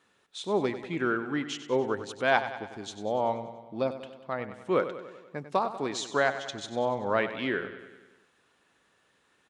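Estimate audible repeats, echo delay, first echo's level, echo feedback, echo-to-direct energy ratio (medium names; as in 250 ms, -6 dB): 6, 96 ms, -12.0 dB, 60%, -10.0 dB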